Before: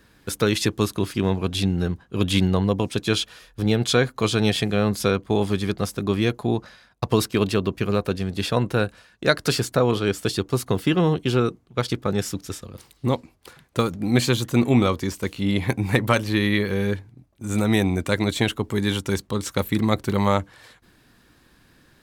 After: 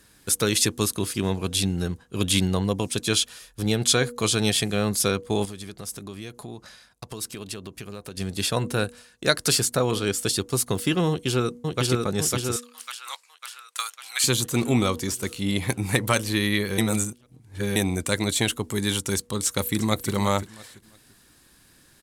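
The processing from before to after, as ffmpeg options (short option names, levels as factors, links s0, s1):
-filter_complex "[0:a]asettb=1/sr,asplit=3[s0][s1][s2];[s0]atrim=end=5.454[s3];[s1]atrim=start=5.45:end=8.17,asetpts=PTS-STARTPTS,afade=t=in:d=0.004:c=qsin,afade=t=out:st=2.716:d=0.004:c=qsin,acompressor=threshold=0.02:ratio=3:attack=3.2:release=140:knee=1:detection=peak[s4];[s2]atrim=start=8.166[s5];[s3][s4]acrossfade=d=0.004:c1=hsin:c2=qsin[s6];[s6][s5]acrossfade=d=0.004:c1=qsin:c2=hsin,asplit=2[s7][s8];[s8]afade=t=in:st=11.09:d=0.01,afade=t=out:st=11.84:d=0.01,aecho=0:1:550|1100|1650|2200|2750|3300|3850|4400|4950|5500|6050:0.794328|0.516313|0.335604|0.218142|0.141793|0.0921652|0.0599074|0.0389398|0.0253109|0.0164521|0.0106938[s9];[s7][s9]amix=inputs=2:normalize=0,asettb=1/sr,asplit=3[s10][s11][s12];[s10]atrim=end=12.564[s13];[s11]atrim=start=12.56:end=14.24,asetpts=PTS-STARTPTS,afade=t=in:d=0.004:c=qsin,afade=t=out:st=1.676:d=0.004:c=qsin,highpass=f=1100:w=0.5412,highpass=f=1100:w=1.3066[s14];[s12]atrim=start=14.236[s15];[s13][s14]acrossfade=d=0.004:c1=hsin:c2=qsin[s16];[s16][s15]acrossfade=d=0.004:c1=qsin:c2=hsin,asplit=2[s17][s18];[s18]afade=t=in:st=19.46:d=0.01,afade=t=out:st=20.12:d=0.01,aecho=0:1:340|680|1020:0.223872|0.0671616|0.0201485[s19];[s17][s19]amix=inputs=2:normalize=0,asplit=3[s20][s21][s22];[s20]atrim=end=16.782[s23];[s21]atrim=start=16.778:end=17.762,asetpts=PTS-STARTPTS,areverse[s24];[s22]atrim=start=17.758[s25];[s23][s24]acrossfade=d=0.004:c1=hsin:c2=hsin[s26];[s26][s25]acrossfade=d=0.004:c1=hsin:c2=hsin,equalizer=f=9400:t=o:w=1.7:g=14.5,bandreject=f=241.3:t=h:w=4,bandreject=f=482.6:t=h:w=4,volume=0.668"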